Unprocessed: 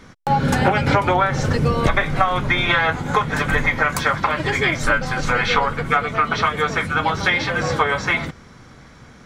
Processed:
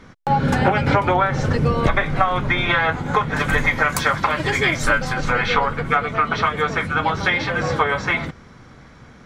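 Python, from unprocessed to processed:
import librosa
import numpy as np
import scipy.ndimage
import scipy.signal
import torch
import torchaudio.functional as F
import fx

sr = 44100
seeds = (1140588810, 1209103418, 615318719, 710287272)

y = fx.high_shelf(x, sr, hz=5200.0, db=fx.steps((0.0, -9.0), (3.39, 3.5), (5.12, -8.0)))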